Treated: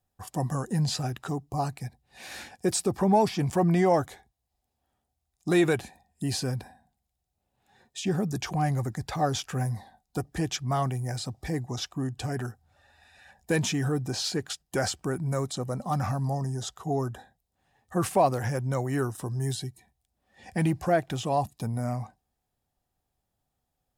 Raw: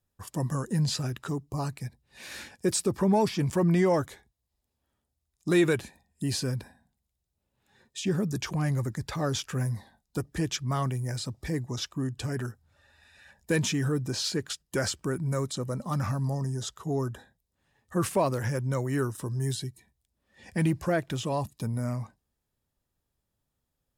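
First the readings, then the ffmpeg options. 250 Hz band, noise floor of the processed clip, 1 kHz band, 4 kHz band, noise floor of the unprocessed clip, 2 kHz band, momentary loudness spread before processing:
0.0 dB, -82 dBFS, +5.5 dB, 0.0 dB, -82 dBFS, 0.0 dB, 12 LU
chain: -af "equalizer=f=750:t=o:w=0.25:g=13.5"

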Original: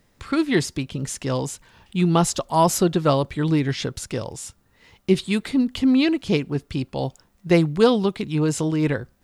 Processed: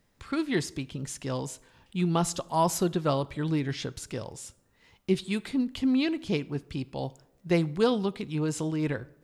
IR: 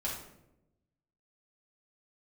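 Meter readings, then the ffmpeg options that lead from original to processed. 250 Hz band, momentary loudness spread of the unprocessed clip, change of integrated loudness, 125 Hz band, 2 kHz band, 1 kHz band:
-7.5 dB, 12 LU, -7.5 dB, -7.5 dB, -7.5 dB, -7.0 dB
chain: -filter_complex "[0:a]asplit=2[a][b];[1:a]atrim=start_sample=2205,lowshelf=f=200:g=-10.5[c];[b][c]afir=irnorm=-1:irlink=0,volume=-19dB[d];[a][d]amix=inputs=2:normalize=0,volume=-8dB"

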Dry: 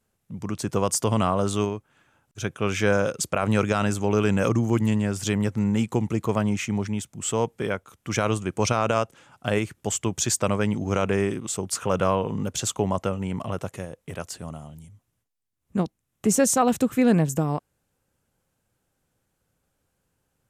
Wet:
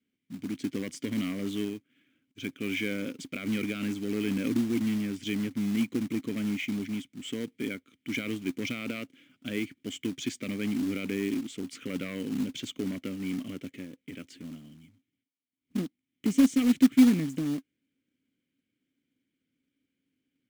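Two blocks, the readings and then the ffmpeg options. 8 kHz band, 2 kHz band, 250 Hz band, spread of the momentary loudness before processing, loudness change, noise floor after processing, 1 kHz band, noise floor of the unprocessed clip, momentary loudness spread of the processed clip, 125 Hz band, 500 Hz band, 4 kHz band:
-16.5 dB, -6.0 dB, -1.5 dB, 12 LU, -5.5 dB, -84 dBFS, -21.0 dB, -76 dBFS, 17 LU, -13.0 dB, -13.5 dB, -5.0 dB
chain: -filter_complex "[0:a]aeval=exprs='0.398*sin(PI/2*1.58*val(0)/0.398)':c=same,asplit=3[a][b][c];[a]bandpass=f=270:t=q:w=8,volume=0dB[d];[b]bandpass=f=2.29k:t=q:w=8,volume=-6dB[e];[c]bandpass=f=3.01k:t=q:w=8,volume=-9dB[f];[d][e][f]amix=inputs=3:normalize=0,acrusher=bits=4:mode=log:mix=0:aa=0.000001"

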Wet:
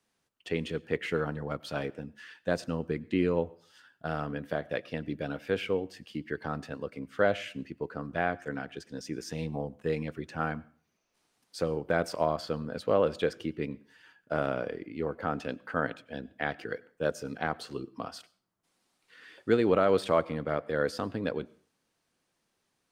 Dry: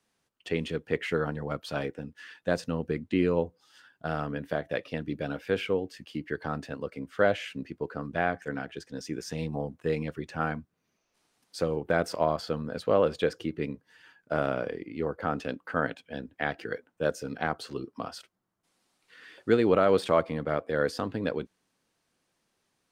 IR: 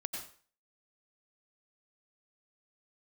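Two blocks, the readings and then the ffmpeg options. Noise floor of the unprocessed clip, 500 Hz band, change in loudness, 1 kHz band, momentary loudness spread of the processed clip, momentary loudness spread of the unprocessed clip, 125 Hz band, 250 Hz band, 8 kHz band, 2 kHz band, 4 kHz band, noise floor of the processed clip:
-78 dBFS, -1.5 dB, -1.5 dB, -1.5 dB, 13 LU, 13 LU, -2.0 dB, -1.5 dB, -1.5 dB, -1.5 dB, -1.5 dB, -79 dBFS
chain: -filter_complex "[0:a]asplit=2[a][b];[1:a]atrim=start_sample=2205[c];[b][c]afir=irnorm=-1:irlink=0,volume=-19dB[d];[a][d]amix=inputs=2:normalize=0,volume=-2.5dB"

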